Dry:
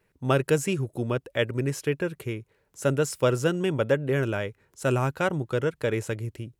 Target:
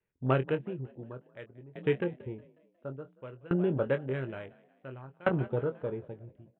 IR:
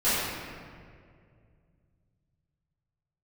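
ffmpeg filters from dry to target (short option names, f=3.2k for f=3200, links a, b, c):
-filter_complex "[0:a]aresample=8000,aresample=44100,afwtdn=0.0251,asplit=2[a][b];[b]adelay=23,volume=-9dB[c];[a][c]amix=inputs=2:normalize=0,asplit=6[d][e][f][g][h][i];[e]adelay=181,afreqshift=41,volume=-19.5dB[j];[f]adelay=362,afreqshift=82,volume=-24.1dB[k];[g]adelay=543,afreqshift=123,volume=-28.7dB[l];[h]adelay=724,afreqshift=164,volume=-33.2dB[m];[i]adelay=905,afreqshift=205,volume=-37.8dB[n];[d][j][k][l][m][n]amix=inputs=6:normalize=0,aeval=exprs='val(0)*pow(10,-26*if(lt(mod(0.57*n/s,1),2*abs(0.57)/1000),1-mod(0.57*n/s,1)/(2*abs(0.57)/1000),(mod(0.57*n/s,1)-2*abs(0.57)/1000)/(1-2*abs(0.57)/1000))/20)':c=same"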